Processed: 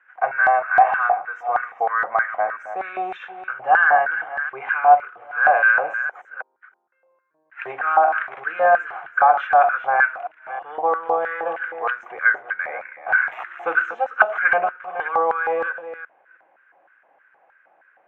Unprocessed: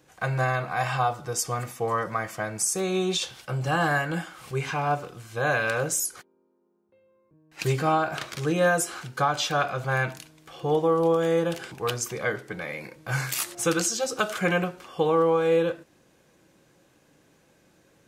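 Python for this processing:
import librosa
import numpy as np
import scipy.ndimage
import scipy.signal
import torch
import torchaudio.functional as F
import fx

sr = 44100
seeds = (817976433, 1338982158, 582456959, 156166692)

y = fx.reverse_delay(x, sr, ms=321, wet_db=-11.0)
y = scipy.signal.sosfilt(scipy.signal.cheby2(4, 40, 4300.0, 'lowpass', fs=sr, output='sos'), y)
y = fx.filter_lfo_highpass(y, sr, shape='square', hz=3.2, low_hz=740.0, high_hz=1500.0, q=5.8)
y = y * 10.0 ** (1.0 / 20.0)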